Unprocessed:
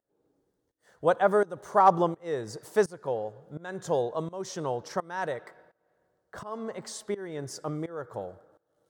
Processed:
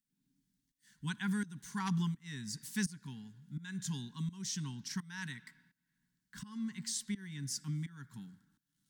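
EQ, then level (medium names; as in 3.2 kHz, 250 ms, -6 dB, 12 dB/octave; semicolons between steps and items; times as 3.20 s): elliptic band-stop 280–1200 Hz, stop band 60 dB; static phaser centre 330 Hz, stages 6; +3.0 dB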